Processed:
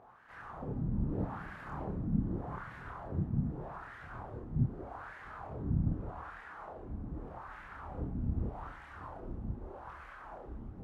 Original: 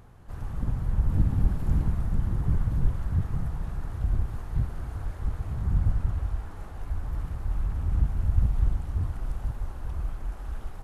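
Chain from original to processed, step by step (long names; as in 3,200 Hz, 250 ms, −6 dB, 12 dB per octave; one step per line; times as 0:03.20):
LFO wah 0.82 Hz 220–1,800 Hz, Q 2.5
multi-voice chorus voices 4, 1 Hz, delay 29 ms, depth 4 ms
level +11 dB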